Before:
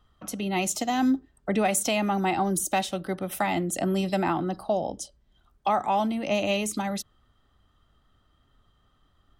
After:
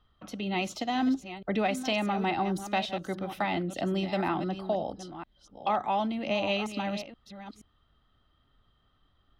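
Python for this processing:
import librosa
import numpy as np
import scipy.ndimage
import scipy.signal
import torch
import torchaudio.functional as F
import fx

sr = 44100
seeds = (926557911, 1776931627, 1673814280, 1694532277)

y = fx.reverse_delay(x, sr, ms=476, wet_db=-11.0)
y = fx.high_shelf_res(y, sr, hz=5900.0, db=-13.5, q=1.5)
y = F.gain(torch.from_numpy(y), -4.0).numpy()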